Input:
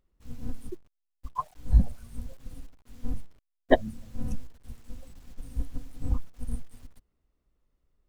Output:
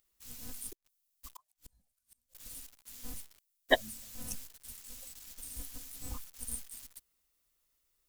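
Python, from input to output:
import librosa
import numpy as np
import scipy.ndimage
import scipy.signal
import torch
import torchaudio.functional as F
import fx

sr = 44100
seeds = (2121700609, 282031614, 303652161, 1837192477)

y = librosa.effects.preemphasis(x, coef=0.97, zi=[0.0])
y = fx.gate_flip(y, sr, shuts_db=-49.0, range_db=-38, at=(0.72, 2.35))
y = y * 10.0 ** (14.0 / 20.0)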